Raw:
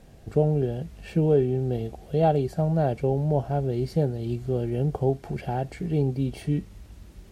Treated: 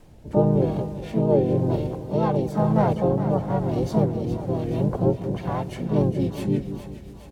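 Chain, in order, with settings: rotary speaker horn 1 Hz, later 7.5 Hz, at 5.57; harmoniser -4 st -4 dB, +5 st -1 dB, +12 st -14 dB; split-band echo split 600 Hz, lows 0.193 s, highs 0.415 s, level -10 dB

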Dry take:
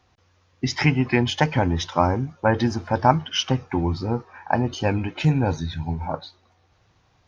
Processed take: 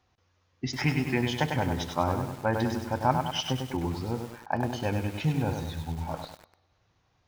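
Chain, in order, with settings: thinning echo 63 ms, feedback 70%, high-pass 190 Hz, level -20.5 dB; lo-fi delay 99 ms, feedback 55%, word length 6-bit, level -5 dB; gain -8 dB

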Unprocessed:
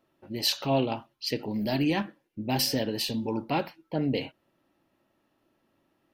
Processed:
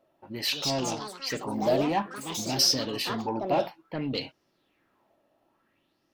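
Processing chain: soft clip -21 dBFS, distortion -16 dB; echoes that change speed 0.288 s, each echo +4 st, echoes 3, each echo -6 dB; LFO bell 0.57 Hz 600–5600 Hz +13 dB; gain -2.5 dB

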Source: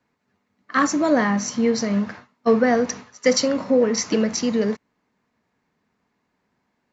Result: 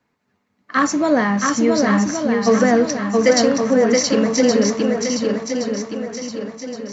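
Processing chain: swung echo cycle 1.12 s, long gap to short 1.5:1, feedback 42%, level -3 dB; gain +2 dB

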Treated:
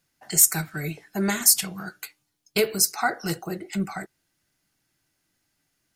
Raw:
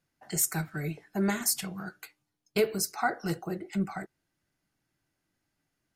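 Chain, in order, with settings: high shelf 2300 Hz +9 dB; gain +2.5 dB

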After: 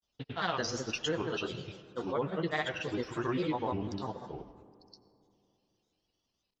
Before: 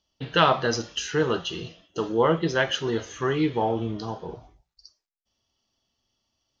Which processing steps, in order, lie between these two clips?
compressor 10:1, threshold -22 dBFS, peak gain reduction 9.5 dB; grains, pitch spread up and down by 3 st; reverb RT60 2.8 s, pre-delay 60 ms, DRR 15.5 dB; gain -5 dB

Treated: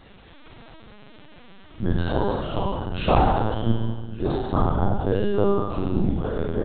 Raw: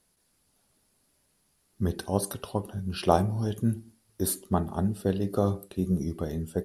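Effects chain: spectral trails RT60 1.15 s; upward compressor, threshold -30 dBFS; on a send: flutter echo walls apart 6 m, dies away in 0.96 s; on the sum: LPC vocoder at 8 kHz pitch kept; outdoor echo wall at 200 m, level -13 dB

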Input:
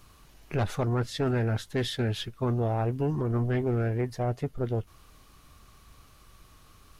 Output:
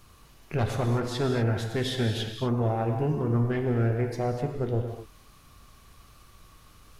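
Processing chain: non-linear reverb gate 0.27 s flat, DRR 3.5 dB

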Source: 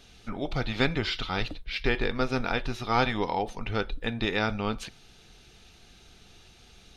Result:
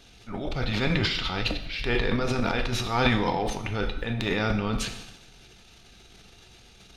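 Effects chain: transient shaper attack -6 dB, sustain +12 dB; two-slope reverb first 0.82 s, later 2.1 s, DRR 6.5 dB

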